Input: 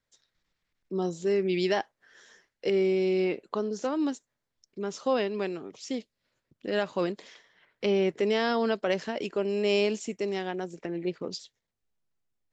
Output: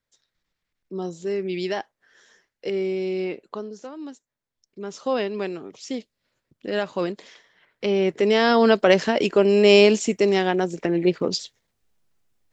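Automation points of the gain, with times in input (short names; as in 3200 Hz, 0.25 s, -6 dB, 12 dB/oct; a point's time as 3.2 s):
3.49 s -0.5 dB
3.94 s -9 dB
5.2 s +3 dB
7.88 s +3 dB
8.76 s +11.5 dB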